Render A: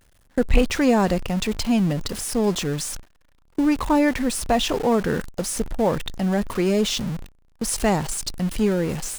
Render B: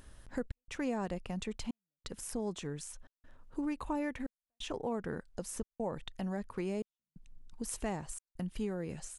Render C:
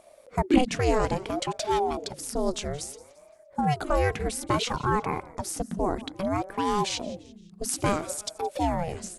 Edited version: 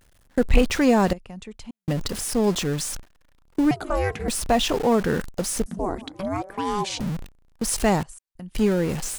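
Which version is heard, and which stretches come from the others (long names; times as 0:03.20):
A
0:01.13–0:01.88: punch in from B
0:03.71–0:04.28: punch in from C
0:05.66–0:07.00: punch in from C
0:08.03–0:08.55: punch in from B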